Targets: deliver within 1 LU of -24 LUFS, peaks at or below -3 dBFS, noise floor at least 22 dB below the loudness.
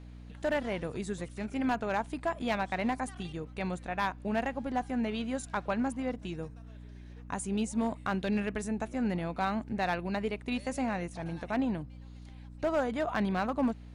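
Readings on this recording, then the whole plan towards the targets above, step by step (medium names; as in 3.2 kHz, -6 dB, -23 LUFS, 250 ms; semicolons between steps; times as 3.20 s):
clipped samples 0.4%; clipping level -22.0 dBFS; hum 60 Hz; highest harmonic 300 Hz; hum level -45 dBFS; loudness -33.5 LUFS; peak level -22.0 dBFS; loudness target -24.0 LUFS
-> clip repair -22 dBFS; hum notches 60/120/180/240/300 Hz; trim +9.5 dB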